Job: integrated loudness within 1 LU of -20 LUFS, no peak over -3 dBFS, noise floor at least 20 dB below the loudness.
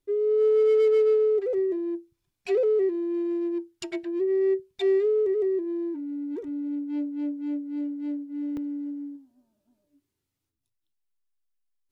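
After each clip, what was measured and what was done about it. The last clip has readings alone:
clipped samples 0.5%; clipping level -16.5 dBFS; dropouts 1; longest dropout 2.5 ms; loudness -26.0 LUFS; peak level -16.5 dBFS; loudness target -20.0 LUFS
-> clip repair -16.5 dBFS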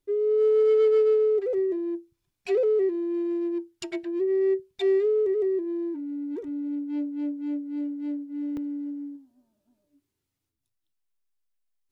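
clipped samples 0.0%; dropouts 1; longest dropout 2.5 ms
-> interpolate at 8.57 s, 2.5 ms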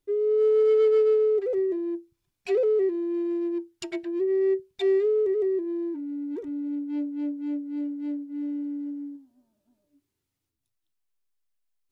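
dropouts 0; loudness -26.0 LUFS; peak level -15.0 dBFS; loudness target -20.0 LUFS
-> trim +6 dB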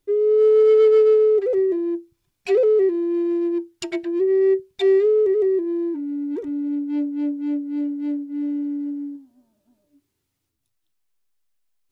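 loudness -20.0 LUFS; peak level -9.0 dBFS; noise floor -76 dBFS

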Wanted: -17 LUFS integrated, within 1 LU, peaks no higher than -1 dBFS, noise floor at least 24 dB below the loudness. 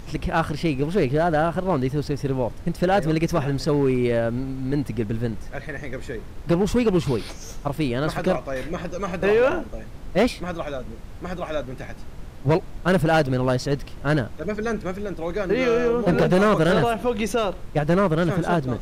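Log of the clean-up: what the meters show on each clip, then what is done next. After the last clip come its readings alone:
clipped samples 1.4%; clipping level -13.0 dBFS; noise floor -38 dBFS; noise floor target -47 dBFS; loudness -23.0 LUFS; peak level -13.0 dBFS; loudness target -17.0 LUFS
-> clip repair -13 dBFS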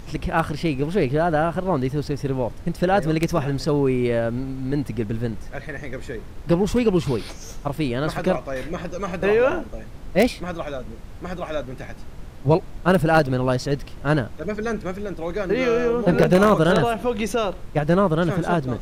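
clipped samples 0.0%; noise floor -38 dBFS; noise floor target -47 dBFS
-> noise print and reduce 9 dB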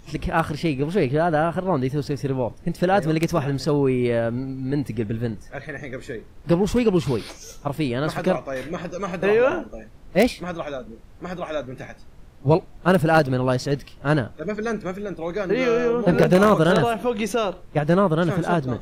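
noise floor -45 dBFS; noise floor target -47 dBFS
-> noise print and reduce 6 dB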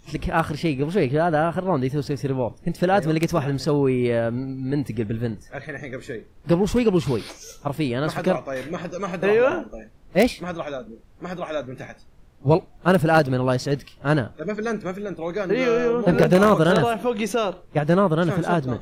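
noise floor -49 dBFS; loudness -22.5 LUFS; peak level -4.0 dBFS; loudness target -17.0 LUFS
-> trim +5.5 dB; peak limiter -1 dBFS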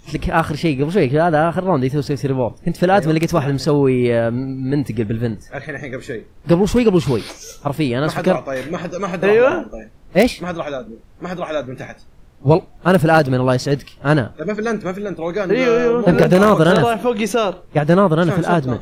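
loudness -17.0 LUFS; peak level -1.0 dBFS; noise floor -44 dBFS

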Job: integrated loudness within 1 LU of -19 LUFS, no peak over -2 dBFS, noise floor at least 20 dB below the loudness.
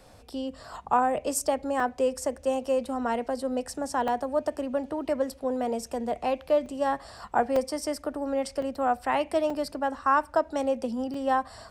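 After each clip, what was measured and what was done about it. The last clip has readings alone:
dropouts 7; longest dropout 3.3 ms; loudness -28.5 LUFS; peak level -10.0 dBFS; loudness target -19.0 LUFS
-> interpolate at 1.80/4.08/6.66/7.56/8.62/9.50/11.14 s, 3.3 ms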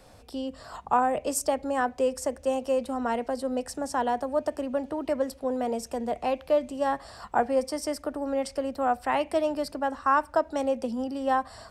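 dropouts 0; loudness -28.5 LUFS; peak level -10.0 dBFS; loudness target -19.0 LUFS
-> trim +9.5 dB; peak limiter -2 dBFS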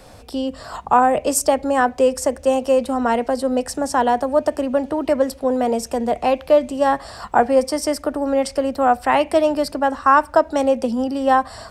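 loudness -19.0 LUFS; peak level -2.0 dBFS; noise floor -42 dBFS

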